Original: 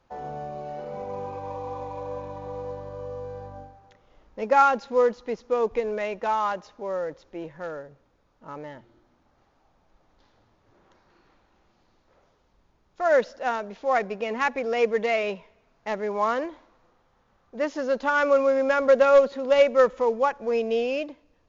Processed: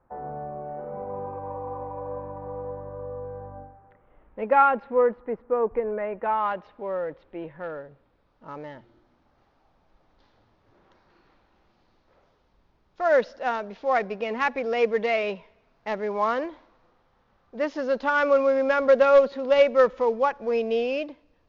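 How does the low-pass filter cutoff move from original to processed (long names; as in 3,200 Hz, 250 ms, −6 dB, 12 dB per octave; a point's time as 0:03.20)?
low-pass filter 24 dB per octave
0:03.54 1,600 Hz
0:04.58 2,800 Hz
0:05.32 1,800 Hz
0:06.10 1,800 Hz
0:06.51 3,200 Hz
0:07.58 3,200 Hz
0:08.50 5,400 Hz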